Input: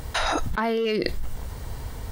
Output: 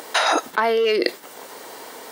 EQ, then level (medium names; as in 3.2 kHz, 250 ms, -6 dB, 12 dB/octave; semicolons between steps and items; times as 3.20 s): high-pass 320 Hz 24 dB/octave; +6.5 dB